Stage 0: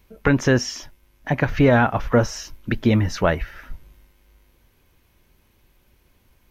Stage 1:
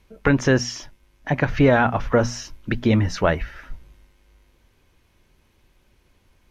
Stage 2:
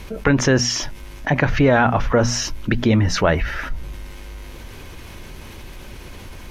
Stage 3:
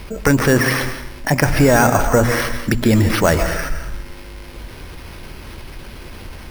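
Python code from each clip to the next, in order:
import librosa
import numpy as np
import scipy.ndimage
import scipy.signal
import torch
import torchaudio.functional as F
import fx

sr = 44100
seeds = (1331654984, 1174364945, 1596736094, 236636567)

y1 = scipy.signal.sosfilt(scipy.signal.butter(2, 9500.0, 'lowpass', fs=sr, output='sos'), x)
y1 = fx.hum_notches(y1, sr, base_hz=60, count=4)
y2 = fx.env_flatten(y1, sr, amount_pct=50)
y3 = fx.rev_plate(y2, sr, seeds[0], rt60_s=0.96, hf_ratio=0.65, predelay_ms=115, drr_db=7.5)
y3 = np.repeat(y3[::6], 6)[:len(y3)]
y3 = F.gain(torch.from_numpy(y3), 2.0).numpy()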